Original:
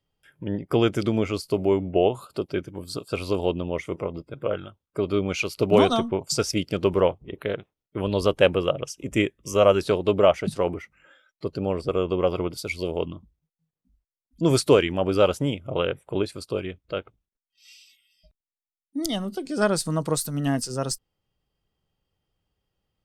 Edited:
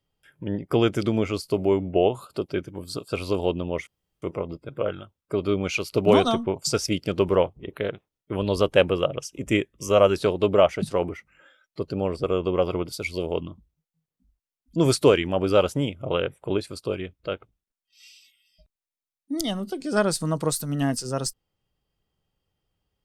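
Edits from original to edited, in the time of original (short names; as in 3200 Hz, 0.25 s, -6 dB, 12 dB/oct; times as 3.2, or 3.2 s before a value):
3.87 insert room tone 0.35 s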